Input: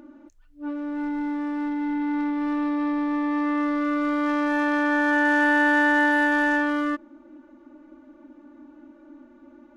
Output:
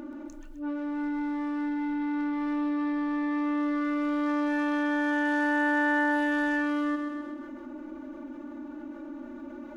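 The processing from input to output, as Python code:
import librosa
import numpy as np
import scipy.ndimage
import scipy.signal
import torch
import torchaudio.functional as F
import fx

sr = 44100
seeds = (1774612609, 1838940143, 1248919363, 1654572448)

p1 = x + fx.echo_feedback(x, sr, ms=129, feedback_pct=47, wet_db=-10, dry=0)
p2 = fx.env_flatten(p1, sr, amount_pct=50)
y = p2 * librosa.db_to_amplitude(-8.5)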